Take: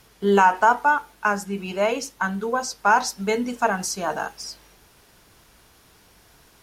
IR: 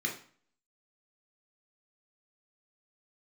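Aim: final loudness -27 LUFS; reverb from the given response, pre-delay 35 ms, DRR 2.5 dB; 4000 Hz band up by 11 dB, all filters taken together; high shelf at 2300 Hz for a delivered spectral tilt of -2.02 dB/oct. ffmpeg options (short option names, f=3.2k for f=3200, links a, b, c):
-filter_complex "[0:a]highshelf=f=2.3k:g=8,equalizer=f=4k:t=o:g=7,asplit=2[a][b];[1:a]atrim=start_sample=2205,adelay=35[c];[b][c]afir=irnorm=-1:irlink=0,volume=-7.5dB[d];[a][d]amix=inputs=2:normalize=0,volume=-9dB"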